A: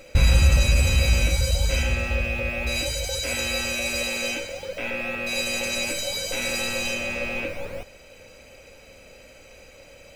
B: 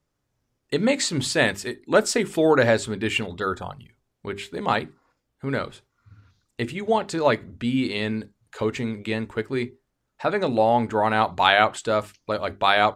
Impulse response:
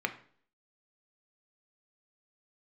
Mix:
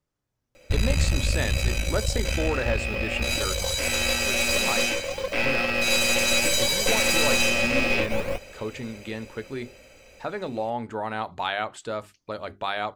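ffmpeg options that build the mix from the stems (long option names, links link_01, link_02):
-filter_complex "[0:a]dynaudnorm=framelen=650:gausssize=7:maxgain=11.5dB,aeval=exprs='(tanh(5.01*val(0)+0.8)-tanh(0.8))/5.01':channel_layout=same,adelay=550,volume=-1.5dB[link_01];[1:a]acompressor=threshold=-25dB:ratio=1.5,volume=-6dB[link_02];[link_01][link_02]amix=inputs=2:normalize=0"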